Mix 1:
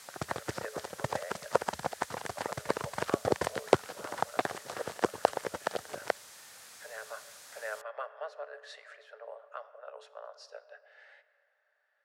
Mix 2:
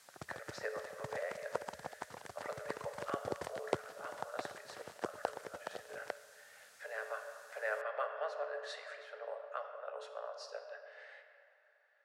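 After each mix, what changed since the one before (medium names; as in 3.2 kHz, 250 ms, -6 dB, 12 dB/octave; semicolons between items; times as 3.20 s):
speech: send +10.0 dB; background -11.5 dB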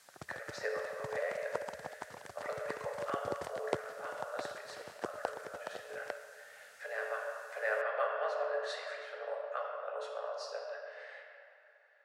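speech: send +8.0 dB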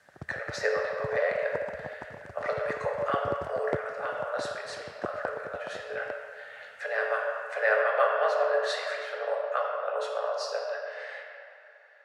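speech +9.5 dB; background: add tilt EQ -3.5 dB/octave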